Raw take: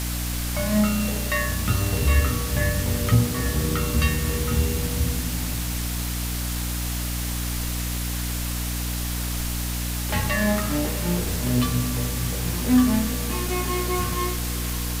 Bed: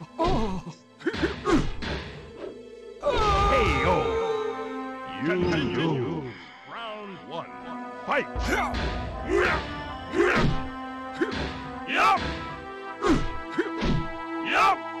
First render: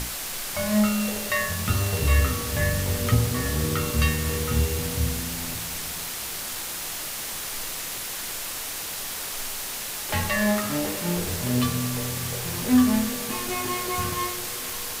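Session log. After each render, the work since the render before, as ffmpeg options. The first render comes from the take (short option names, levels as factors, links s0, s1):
-af "bandreject=f=60:t=h:w=6,bandreject=f=120:t=h:w=6,bandreject=f=180:t=h:w=6,bandreject=f=240:t=h:w=6,bandreject=f=300:t=h:w=6,bandreject=f=360:t=h:w=6"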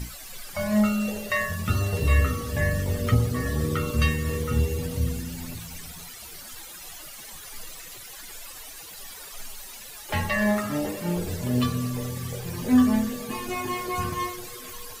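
-af "afftdn=nr=15:nf=-33"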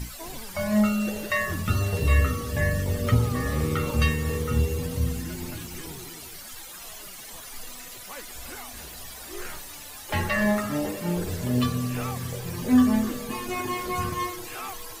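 -filter_complex "[1:a]volume=0.141[s0];[0:a][s0]amix=inputs=2:normalize=0"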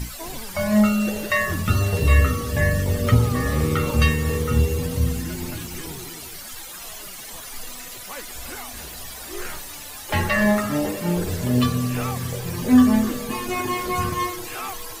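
-af "volume=1.68"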